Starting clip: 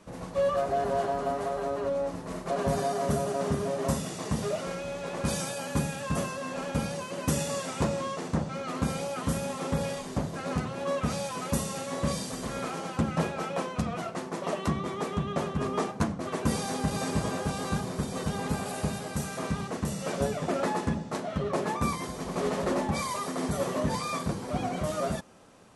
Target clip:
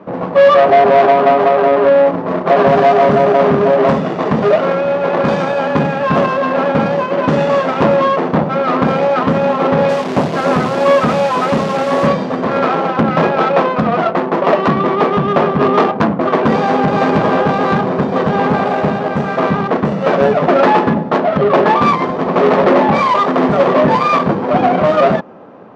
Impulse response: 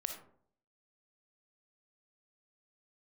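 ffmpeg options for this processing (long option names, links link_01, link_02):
-filter_complex "[0:a]lowshelf=frequency=490:gain=-7,asoftclip=type=tanh:threshold=-28dB,adynamicsmooth=sensitivity=3:basefreq=860,asplit=3[link_01][link_02][link_03];[link_01]afade=type=out:start_time=9.88:duration=0.02[link_04];[link_02]acrusher=bits=9:dc=4:mix=0:aa=0.000001,afade=type=in:start_time=9.88:duration=0.02,afade=type=out:start_time=12.06:duration=0.02[link_05];[link_03]afade=type=in:start_time=12.06:duration=0.02[link_06];[link_04][link_05][link_06]amix=inputs=3:normalize=0,highpass=180,lowpass=4900,alimiter=level_in=27dB:limit=-1dB:release=50:level=0:latency=1,volume=-1dB"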